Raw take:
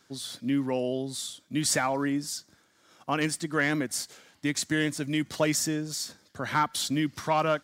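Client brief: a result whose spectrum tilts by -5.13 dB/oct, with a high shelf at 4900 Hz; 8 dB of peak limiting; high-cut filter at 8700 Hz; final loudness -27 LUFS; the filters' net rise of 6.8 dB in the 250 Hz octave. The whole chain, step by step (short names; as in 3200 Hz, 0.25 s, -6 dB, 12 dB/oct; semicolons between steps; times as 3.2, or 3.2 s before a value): LPF 8700 Hz; bell 250 Hz +8.5 dB; high shelf 4900 Hz -9 dB; gain +2 dB; limiter -17 dBFS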